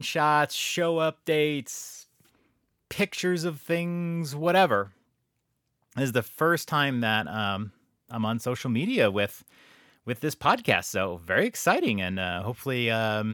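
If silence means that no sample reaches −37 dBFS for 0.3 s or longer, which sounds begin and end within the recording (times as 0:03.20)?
0:02.91–0:04.87
0:05.93–0:07.68
0:08.09–0:09.48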